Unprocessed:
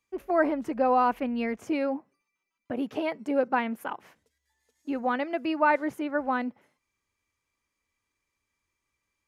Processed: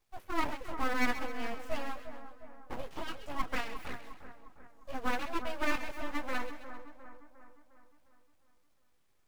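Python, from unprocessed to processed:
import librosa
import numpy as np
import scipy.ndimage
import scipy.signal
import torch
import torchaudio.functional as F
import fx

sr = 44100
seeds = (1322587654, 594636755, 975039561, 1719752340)

p1 = fx.dmg_noise_colour(x, sr, seeds[0], colour='pink', level_db=-69.0)
p2 = fx.chorus_voices(p1, sr, voices=6, hz=0.41, base_ms=18, depth_ms=3.0, mix_pct=45)
p3 = fx.quant_companded(p2, sr, bits=4)
p4 = p2 + (p3 * librosa.db_to_amplitude(-11.0))
p5 = np.abs(p4)
p6 = fx.echo_split(p5, sr, split_hz=1700.0, low_ms=355, high_ms=132, feedback_pct=52, wet_db=-10.5)
y = p6 * librosa.db_to_amplitude(-5.0)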